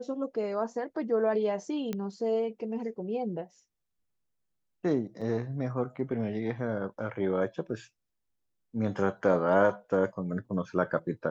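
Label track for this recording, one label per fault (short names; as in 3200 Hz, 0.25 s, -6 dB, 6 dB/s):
1.930000	1.930000	pop -20 dBFS
5.210000	5.220000	gap 5.5 ms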